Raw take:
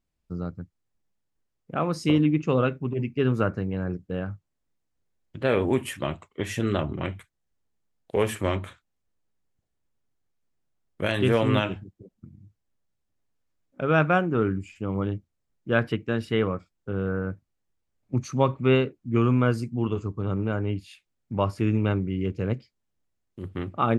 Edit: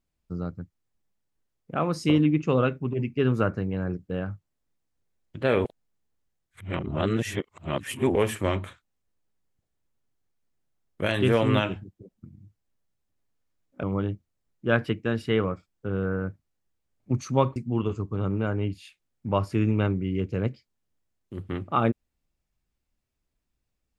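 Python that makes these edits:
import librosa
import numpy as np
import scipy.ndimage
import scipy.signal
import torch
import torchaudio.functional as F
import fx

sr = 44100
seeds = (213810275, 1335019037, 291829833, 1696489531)

y = fx.edit(x, sr, fx.reverse_span(start_s=5.65, length_s=2.5),
    fx.cut(start_s=13.83, length_s=1.03),
    fx.cut(start_s=18.59, length_s=1.03), tone=tone)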